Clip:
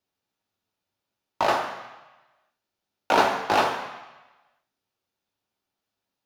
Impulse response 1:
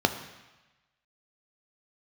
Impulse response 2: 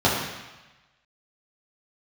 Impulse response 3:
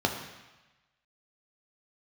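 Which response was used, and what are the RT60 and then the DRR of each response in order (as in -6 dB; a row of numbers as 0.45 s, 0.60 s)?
3; 1.1 s, 1.1 s, 1.1 s; 7.0 dB, -7.0 dB, 2.0 dB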